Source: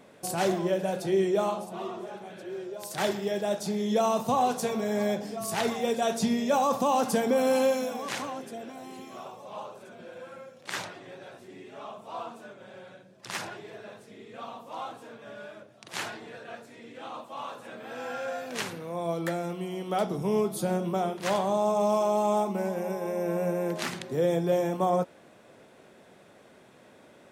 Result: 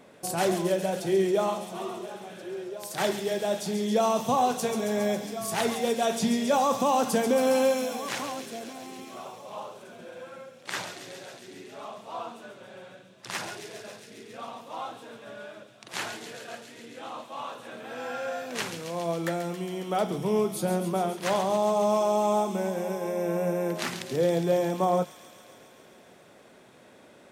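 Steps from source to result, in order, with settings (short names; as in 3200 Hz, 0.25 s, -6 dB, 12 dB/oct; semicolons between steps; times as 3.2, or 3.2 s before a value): notches 50/100/150/200 Hz; thin delay 0.137 s, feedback 78%, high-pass 2800 Hz, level -7 dB; gain +1 dB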